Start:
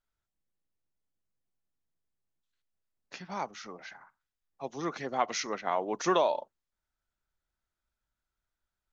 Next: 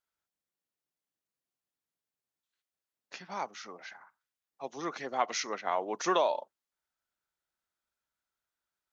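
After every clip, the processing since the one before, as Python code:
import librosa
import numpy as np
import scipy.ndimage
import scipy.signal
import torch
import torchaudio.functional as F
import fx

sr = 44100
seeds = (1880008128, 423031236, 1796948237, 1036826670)

y = fx.highpass(x, sr, hz=360.0, slope=6)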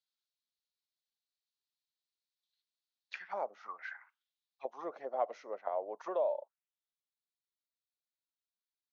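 y = fx.rider(x, sr, range_db=5, speed_s=2.0)
y = fx.auto_wah(y, sr, base_hz=570.0, top_hz=4100.0, q=3.9, full_db=-31.5, direction='down')
y = y * 10.0 ** (2.0 / 20.0)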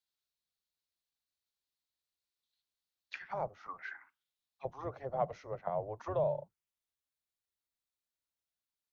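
y = fx.octave_divider(x, sr, octaves=2, level_db=2.0)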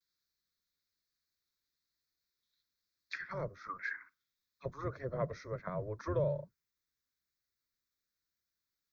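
y = fx.vibrato(x, sr, rate_hz=1.1, depth_cents=77.0)
y = fx.fixed_phaser(y, sr, hz=2900.0, stages=6)
y = y * 10.0 ** (6.0 / 20.0)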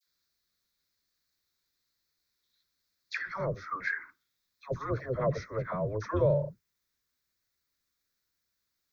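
y = fx.dispersion(x, sr, late='lows', ms=66.0, hz=1000.0)
y = y * 10.0 ** (7.0 / 20.0)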